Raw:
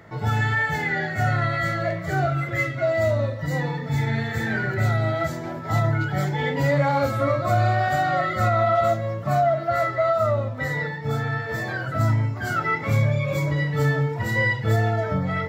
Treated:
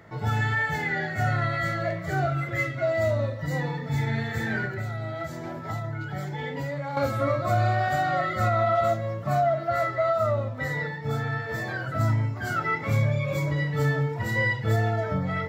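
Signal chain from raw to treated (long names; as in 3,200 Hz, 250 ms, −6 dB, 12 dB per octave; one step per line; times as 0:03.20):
0:04.65–0:06.97: downward compressor, threshold −26 dBFS, peak gain reduction 10 dB
level −3 dB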